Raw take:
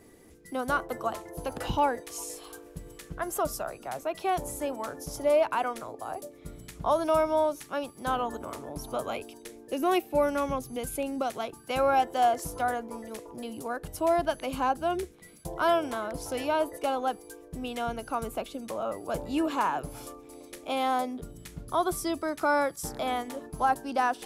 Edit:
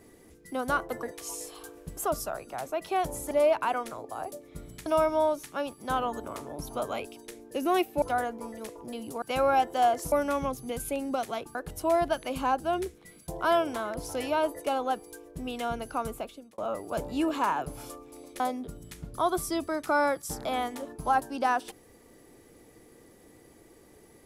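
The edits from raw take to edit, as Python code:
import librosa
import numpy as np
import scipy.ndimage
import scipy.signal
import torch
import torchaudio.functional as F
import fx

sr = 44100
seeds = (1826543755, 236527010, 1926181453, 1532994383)

y = fx.edit(x, sr, fx.cut(start_s=1.03, length_s=0.89),
    fx.cut(start_s=2.86, length_s=0.44),
    fx.cut(start_s=4.64, length_s=0.57),
    fx.cut(start_s=6.76, length_s=0.27),
    fx.swap(start_s=10.19, length_s=1.43, other_s=12.52, other_length_s=1.2),
    fx.fade_out_span(start_s=18.23, length_s=0.52),
    fx.cut(start_s=20.57, length_s=0.37), tone=tone)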